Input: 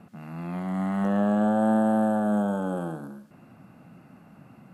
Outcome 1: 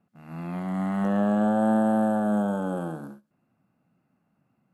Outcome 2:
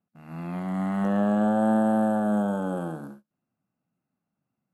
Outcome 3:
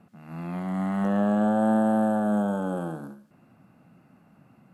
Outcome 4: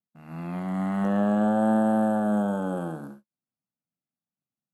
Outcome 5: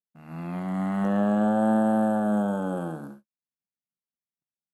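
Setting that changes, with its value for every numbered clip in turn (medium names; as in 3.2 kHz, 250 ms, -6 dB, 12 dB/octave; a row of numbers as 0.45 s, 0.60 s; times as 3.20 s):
gate, range: -20 dB, -32 dB, -6 dB, -47 dB, -59 dB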